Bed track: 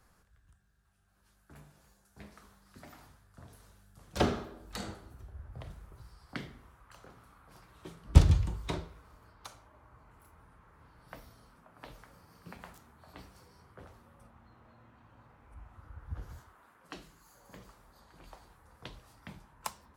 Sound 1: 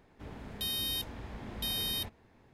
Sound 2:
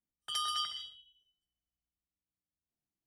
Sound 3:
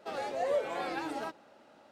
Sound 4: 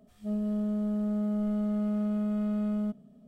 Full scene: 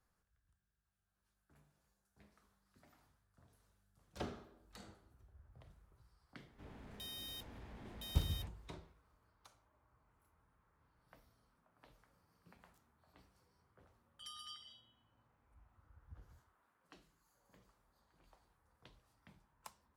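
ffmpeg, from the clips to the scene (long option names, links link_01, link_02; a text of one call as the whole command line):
ffmpeg -i bed.wav -i cue0.wav -i cue1.wav -filter_complex "[0:a]volume=-16dB[link_01];[1:a]asoftclip=type=tanh:threshold=-35dB[link_02];[2:a]highpass=1400[link_03];[link_02]atrim=end=2.53,asetpts=PTS-STARTPTS,volume=-9dB,afade=type=in:duration=0.004:curve=hsin,afade=type=out:start_time=2.526:duration=0.004:curve=hsin,adelay=6390[link_04];[link_03]atrim=end=3.06,asetpts=PTS-STARTPTS,volume=-16dB,afade=type=in:duration=0.004:curve=hsin,afade=type=out:start_time=3.056:duration=0.004:curve=hsin,adelay=13910[link_05];[link_01][link_04][link_05]amix=inputs=3:normalize=0" out.wav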